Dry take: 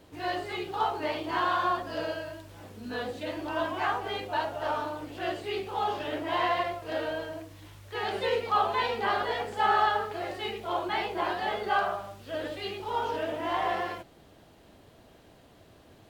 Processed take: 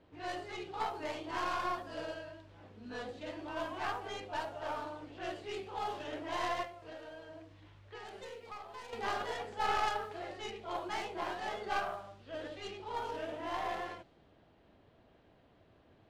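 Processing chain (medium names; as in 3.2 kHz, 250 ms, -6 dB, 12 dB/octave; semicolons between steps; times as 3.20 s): tracing distortion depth 0.14 ms; level-controlled noise filter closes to 2.9 kHz, open at -25 dBFS; 6.64–8.93 s: compression 6:1, threshold -37 dBFS, peak gain reduction 15.5 dB; trim -8.5 dB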